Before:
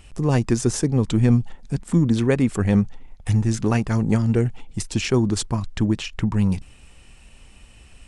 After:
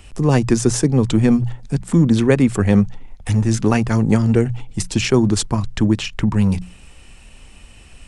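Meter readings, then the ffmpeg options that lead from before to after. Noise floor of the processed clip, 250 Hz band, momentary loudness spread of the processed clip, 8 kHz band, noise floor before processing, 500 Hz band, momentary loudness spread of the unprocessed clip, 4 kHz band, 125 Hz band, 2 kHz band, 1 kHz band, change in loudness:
-44 dBFS, +4.5 dB, 8 LU, +5.0 dB, -48 dBFS, +5.0 dB, 8 LU, +5.0 dB, +3.0 dB, +5.0 dB, +5.0 dB, +4.0 dB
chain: -filter_complex "[0:a]bandreject=f=60:t=h:w=6,bandreject=f=120:t=h:w=6,bandreject=f=180:t=h:w=6,acrossover=split=160|1500[s0][s1][s2];[s0]volume=11.9,asoftclip=hard,volume=0.0841[s3];[s3][s1][s2]amix=inputs=3:normalize=0,volume=1.78"

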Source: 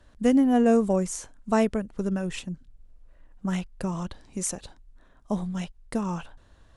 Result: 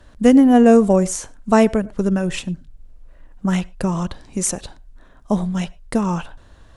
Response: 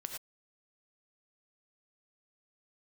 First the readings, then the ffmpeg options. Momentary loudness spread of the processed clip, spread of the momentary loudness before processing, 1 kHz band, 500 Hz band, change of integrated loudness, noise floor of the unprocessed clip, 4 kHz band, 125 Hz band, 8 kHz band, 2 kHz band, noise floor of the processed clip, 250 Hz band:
16 LU, 16 LU, +9.0 dB, +9.0 dB, +9.0 dB, -57 dBFS, +8.5 dB, +9.0 dB, +8.5 dB, +8.5 dB, -48 dBFS, +9.0 dB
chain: -filter_complex "[0:a]asplit=2[s0][s1];[1:a]atrim=start_sample=2205,highshelf=f=3700:g=-10.5[s2];[s1][s2]afir=irnorm=-1:irlink=0,volume=0.178[s3];[s0][s3]amix=inputs=2:normalize=0,volume=2.51"

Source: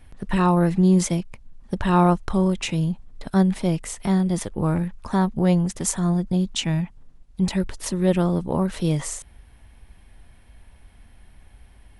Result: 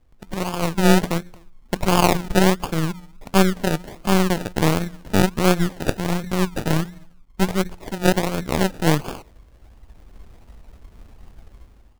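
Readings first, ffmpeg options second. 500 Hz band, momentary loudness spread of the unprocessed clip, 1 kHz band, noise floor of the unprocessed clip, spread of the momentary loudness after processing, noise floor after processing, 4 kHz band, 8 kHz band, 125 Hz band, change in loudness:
+3.5 dB, 9 LU, +3.0 dB, -51 dBFS, 10 LU, -51 dBFS, +6.0 dB, 0.0 dB, -1.0 dB, +1.0 dB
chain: -filter_complex "[0:a]bandreject=f=88.96:t=h:w=4,bandreject=f=177.92:t=h:w=4,bandreject=f=266.88:t=h:w=4,bandreject=f=355.84:t=h:w=4,bandreject=f=444.8:t=h:w=4,bandreject=f=533.76:t=h:w=4,bandreject=f=622.72:t=h:w=4,bandreject=f=711.68:t=h:w=4,bandreject=f=800.64:t=h:w=4,bandreject=f=889.6:t=h:w=4,bandreject=f=978.56:t=h:w=4,bandreject=f=1067.52:t=h:w=4,bandreject=f=1156.48:t=h:w=4,bandreject=f=1245.44:t=h:w=4,bandreject=f=1334.4:t=h:w=4,bandreject=f=1423.36:t=h:w=4,bandreject=f=1512.32:t=h:w=4,bandreject=f=1601.28:t=h:w=4,bandreject=f=1690.24:t=h:w=4,bandreject=f=1779.2:t=h:w=4,bandreject=f=1868.16:t=h:w=4,bandreject=f=1957.12:t=h:w=4,dynaudnorm=f=290:g=5:m=5.96,asplit=2[s0][s1];[s1]adelay=250,highpass=300,lowpass=3400,asoftclip=type=hard:threshold=0.316,volume=0.126[s2];[s0][s2]amix=inputs=2:normalize=0,acrusher=samples=32:mix=1:aa=0.000001:lfo=1:lforange=19.2:lforate=1.4,aeval=exprs='0.944*(cos(1*acos(clip(val(0)/0.944,-1,1)))-cos(1*PI/2))+0.188*(cos(3*acos(clip(val(0)/0.944,-1,1)))-cos(3*PI/2))+0.168*(cos(4*acos(clip(val(0)/0.944,-1,1)))-cos(4*PI/2))':c=same,volume=0.75"

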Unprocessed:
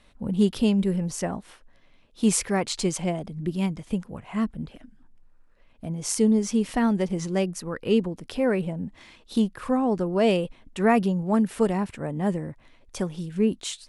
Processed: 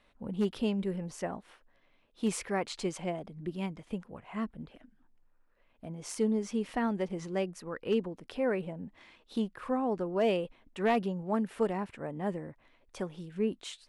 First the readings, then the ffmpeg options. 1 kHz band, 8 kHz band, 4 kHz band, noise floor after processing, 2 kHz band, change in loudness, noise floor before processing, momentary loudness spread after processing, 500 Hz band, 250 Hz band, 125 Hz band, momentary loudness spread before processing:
-6.0 dB, -14.0 dB, -9.0 dB, -68 dBFS, -6.5 dB, -8.5 dB, -57 dBFS, 12 LU, -6.0 dB, -10.0 dB, -11.0 dB, 11 LU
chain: -af "aeval=exprs='0.266*(abs(mod(val(0)/0.266+3,4)-2)-1)':c=same,bass=f=250:g=-7,treble=f=4000:g=-9,volume=0.531"

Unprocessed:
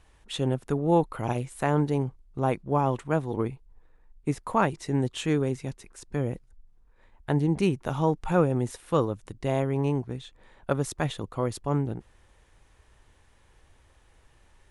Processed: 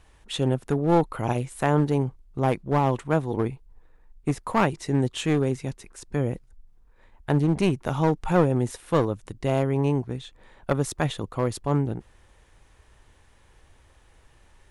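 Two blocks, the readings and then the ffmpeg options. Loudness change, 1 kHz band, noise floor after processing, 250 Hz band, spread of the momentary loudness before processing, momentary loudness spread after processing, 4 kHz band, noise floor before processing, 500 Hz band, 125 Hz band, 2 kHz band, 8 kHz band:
+2.5 dB, +2.0 dB, -58 dBFS, +2.5 dB, 11 LU, 10 LU, +3.0 dB, -61 dBFS, +2.0 dB, +3.0 dB, +3.0 dB, +3.0 dB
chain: -af "aeval=exprs='clip(val(0),-1,0.0668)':c=same,volume=1.41"

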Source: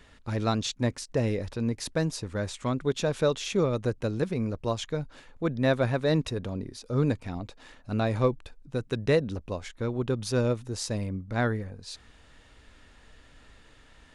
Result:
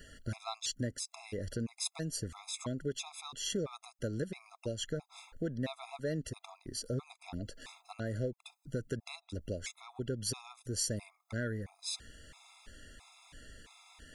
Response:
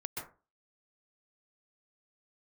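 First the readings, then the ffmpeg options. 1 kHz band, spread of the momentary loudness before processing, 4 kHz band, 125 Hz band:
-13.0 dB, 10 LU, -4.0 dB, -11.0 dB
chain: -af "acompressor=threshold=0.0178:ratio=4,crystalizer=i=2:c=0,afftfilt=real='re*gt(sin(2*PI*1.5*pts/sr)*(1-2*mod(floor(b*sr/1024/680),2)),0)':imag='im*gt(sin(2*PI*1.5*pts/sr)*(1-2*mod(floor(b*sr/1024/680),2)),0)':win_size=1024:overlap=0.75,volume=1.12"

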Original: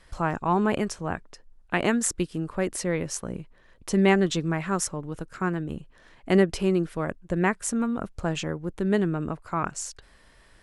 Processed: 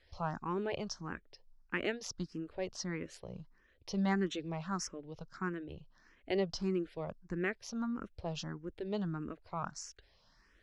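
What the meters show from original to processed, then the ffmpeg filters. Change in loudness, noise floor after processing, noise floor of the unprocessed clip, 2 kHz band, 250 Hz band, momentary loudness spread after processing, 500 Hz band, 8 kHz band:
-12.0 dB, -69 dBFS, -57 dBFS, -11.0 dB, -12.0 dB, 14 LU, -12.0 dB, -15.0 dB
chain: -filter_complex "[0:a]highshelf=f=7000:t=q:w=3:g=-10,asplit=2[s0][s1];[s1]afreqshift=1.6[s2];[s0][s2]amix=inputs=2:normalize=1,volume=0.355"

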